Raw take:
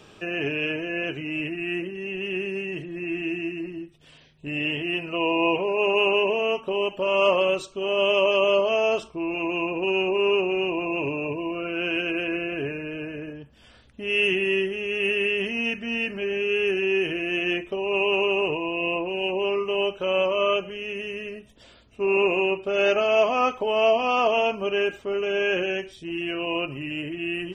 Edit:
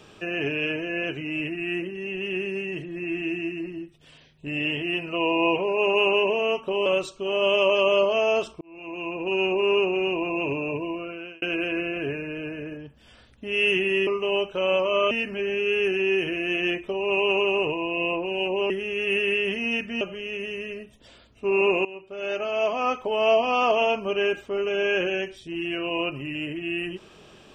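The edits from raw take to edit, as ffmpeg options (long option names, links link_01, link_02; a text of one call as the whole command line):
ffmpeg -i in.wav -filter_complex "[0:a]asplit=9[link_01][link_02][link_03][link_04][link_05][link_06][link_07][link_08][link_09];[link_01]atrim=end=6.862[link_10];[link_02]atrim=start=7.418:end=9.17,asetpts=PTS-STARTPTS,afade=type=out:start_time=1.748:duration=0.004:curve=hsin[link_11];[link_03]atrim=start=9.17:end=11.98,asetpts=PTS-STARTPTS,afade=type=in:duration=0.82,afade=type=out:start_time=2.22:duration=0.59[link_12];[link_04]atrim=start=11.98:end=14.632,asetpts=PTS-STARTPTS,afade=type=in:duration=0.004:curve=hsin[link_13];[link_05]atrim=start=19.528:end=20.572[link_14];[link_06]atrim=start=15.938:end=19.532[link_15];[link_07]atrim=start=14.628:end=15.942[link_16];[link_08]atrim=start=20.568:end=22.41,asetpts=PTS-STARTPTS,afade=type=out:start_time=1.838:duration=0.004:curve=hsin:silence=0.11885[link_17];[link_09]atrim=start=22.41,asetpts=PTS-STARTPTS,afade=type=in:duration=1.47:silence=0.11885[link_18];[link_11][link_12][link_13]concat=n=3:v=0:a=1[link_19];[link_10][link_19]acrossfade=duration=0.004:curve1=hsin:curve2=hsin[link_20];[link_20][link_14]acrossfade=duration=0.004:curve1=hsin:curve2=hsin[link_21];[link_21][link_15]acrossfade=duration=0.004:curve1=hsin:curve2=hsin[link_22];[link_22][link_16]acrossfade=duration=0.004:curve1=hsin:curve2=hsin[link_23];[link_17][link_18]concat=n=2:v=0:a=1[link_24];[link_23][link_24]acrossfade=duration=0.004:curve1=hsin:curve2=hsin" out.wav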